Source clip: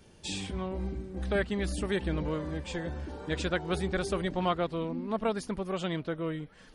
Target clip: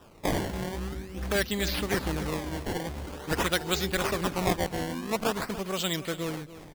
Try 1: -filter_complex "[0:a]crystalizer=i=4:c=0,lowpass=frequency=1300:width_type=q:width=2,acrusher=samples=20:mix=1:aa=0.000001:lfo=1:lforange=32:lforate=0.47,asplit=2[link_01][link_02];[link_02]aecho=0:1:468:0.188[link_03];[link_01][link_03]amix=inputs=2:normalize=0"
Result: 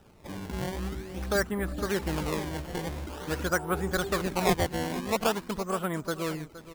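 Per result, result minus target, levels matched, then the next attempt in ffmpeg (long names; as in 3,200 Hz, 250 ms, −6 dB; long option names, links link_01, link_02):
echo 183 ms late; 4,000 Hz band −4.5 dB
-filter_complex "[0:a]crystalizer=i=4:c=0,lowpass=frequency=1300:width_type=q:width=2,acrusher=samples=20:mix=1:aa=0.000001:lfo=1:lforange=32:lforate=0.47,asplit=2[link_01][link_02];[link_02]aecho=0:1:285:0.188[link_03];[link_01][link_03]amix=inputs=2:normalize=0"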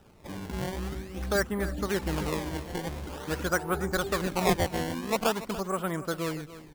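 4,000 Hz band −4.5 dB
-filter_complex "[0:a]crystalizer=i=4:c=0,lowpass=frequency=4700:width_type=q:width=2,acrusher=samples=20:mix=1:aa=0.000001:lfo=1:lforange=32:lforate=0.47,asplit=2[link_01][link_02];[link_02]aecho=0:1:285:0.188[link_03];[link_01][link_03]amix=inputs=2:normalize=0"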